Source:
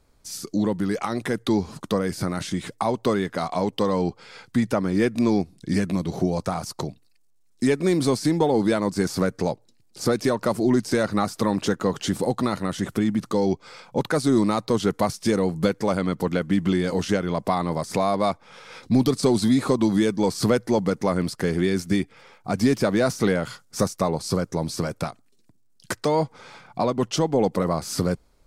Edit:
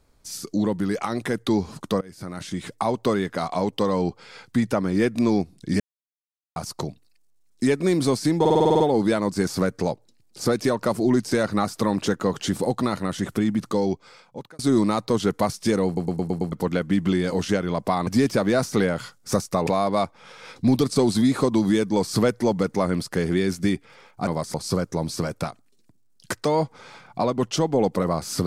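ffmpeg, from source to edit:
ffmpeg -i in.wav -filter_complex "[0:a]asplit=23[link_01][link_02][link_03][link_04][link_05][link_06][link_07][link_08][link_09][link_10][link_11][link_12][link_13][link_14][link_15][link_16][link_17][link_18][link_19][link_20][link_21][link_22][link_23];[link_01]atrim=end=2.01,asetpts=PTS-STARTPTS,afade=type=out:start_time=2.006:duration=0.004:curve=hsin:silence=0.0668344[link_24];[link_02]atrim=start=2.01:end=5.8,asetpts=PTS-STARTPTS,afade=type=in:duration=0.76:silence=0.0668344,afade=type=out:start_time=3.786:duration=0.004:curve=hsin[link_25];[link_03]atrim=start=5.8:end=6.56,asetpts=PTS-STARTPTS,volume=0[link_26];[link_04]atrim=start=6.56:end=8.452,asetpts=PTS-STARTPTS,afade=type=in:duration=0.004:curve=hsin[link_27];[link_05]atrim=start=8.398:end=8.452[link_28];[link_06]atrim=start=8.398:end=8.452[link_29];[link_07]atrim=start=8.398:end=8.452[link_30];[link_08]atrim=start=8.398:end=8.452[link_31];[link_09]atrim=start=8.398:end=8.452[link_32];[link_10]atrim=start=8.398:end=8.452[link_33];[link_11]atrim=start=8.398:end=8.452[link_34];[link_12]atrim=start=8.398:end=14.19,asetpts=PTS-STARTPTS,afade=type=out:start_time=4.932:duration=0.86[link_35];[link_13]atrim=start=14.19:end=15.572,asetpts=PTS-STARTPTS,afade=type=in:duration=0.004:curve=hsin[link_36];[link_14]atrim=start=15.458:end=15.572[link_37];[link_15]atrim=start=15.458:end=15.572[link_38];[link_16]atrim=start=15.458:end=15.572[link_39];[link_17]atrim=start=15.458:end=15.572[link_40];[link_18]atrim=start=15.458:end=15.572[link_41];[link_19]atrim=start=16.118:end=17.672[link_42];[link_20]atrim=start=22.538:end=24.142[link_43];[link_21]atrim=start=17.938:end=22.542[link_44];[link_22]atrim=start=17.668:end=17.942[link_45];[link_23]atrim=start=24.138[link_46];[link_24][link_25][link_26][link_27]concat=n=4:v=0:a=1[link_47];[link_47][link_28]acrossfade=duration=0.004:curve1=hsin:curve2=hsin[link_48];[link_48][link_29]acrossfade=duration=0.004:curve1=hsin:curve2=hsin[link_49];[link_49][link_30]acrossfade=duration=0.004:curve1=hsin:curve2=hsin[link_50];[link_50][link_31]acrossfade=duration=0.004:curve1=hsin:curve2=hsin[link_51];[link_51][link_32]acrossfade=duration=0.004:curve1=hsin:curve2=hsin[link_52];[link_52][link_33]acrossfade=duration=0.004:curve1=hsin:curve2=hsin[link_53];[link_53][link_34]acrossfade=duration=0.004:curve1=hsin:curve2=hsin[link_54];[link_35][link_36]concat=n=2:v=0:a=1[link_55];[link_54][link_55]acrossfade=duration=0.004:curve1=hsin:curve2=hsin[link_56];[link_56][link_37]acrossfade=duration=0.004:curve1=hsin:curve2=hsin[link_57];[link_57][link_38]acrossfade=duration=0.004:curve1=hsin:curve2=hsin[link_58];[link_58][link_39]acrossfade=duration=0.004:curve1=hsin:curve2=hsin[link_59];[link_59][link_40]acrossfade=duration=0.004:curve1=hsin:curve2=hsin[link_60];[link_60][link_41]acrossfade=duration=0.004:curve1=hsin:curve2=hsin[link_61];[link_61][link_42]acrossfade=duration=0.004:curve1=hsin:curve2=hsin[link_62];[link_62][link_43]acrossfade=duration=0.004:curve1=hsin:curve2=hsin[link_63];[link_63][link_44]acrossfade=duration=0.004:curve1=hsin:curve2=hsin[link_64];[link_64][link_45]acrossfade=duration=0.004:curve1=hsin:curve2=hsin[link_65];[link_65][link_46]acrossfade=duration=0.004:curve1=hsin:curve2=hsin" out.wav

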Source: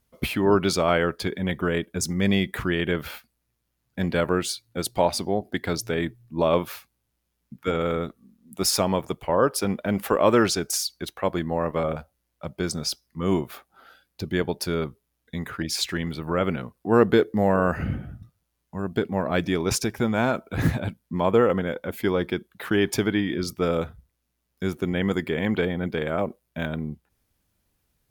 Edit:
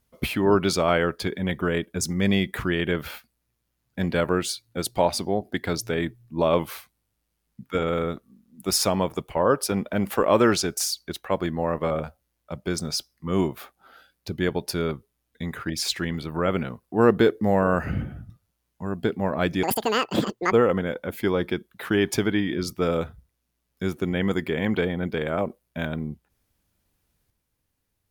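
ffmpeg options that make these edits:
ffmpeg -i in.wav -filter_complex "[0:a]asplit=5[link_01][link_02][link_03][link_04][link_05];[link_01]atrim=end=6.594[link_06];[link_02]atrim=start=6.59:end=7.55,asetpts=PTS-STARTPTS,asetrate=41013,aresample=44100[link_07];[link_03]atrim=start=7.546:end=19.564[link_08];[link_04]atrim=start=19.56:end=21.32,asetpts=PTS-STARTPTS,asetrate=87759,aresample=44100,atrim=end_sample=39003,asetpts=PTS-STARTPTS[link_09];[link_05]atrim=start=21.316[link_10];[link_06][link_07]acrossfade=duration=0.004:curve1=hsin:curve2=hsin[link_11];[link_11][link_08]acrossfade=duration=0.004:curve1=hsin:curve2=hsin[link_12];[link_12][link_09]acrossfade=duration=0.004:curve1=hsin:curve2=hsin[link_13];[link_13][link_10]acrossfade=duration=0.004:curve1=hsin:curve2=hsin" out.wav

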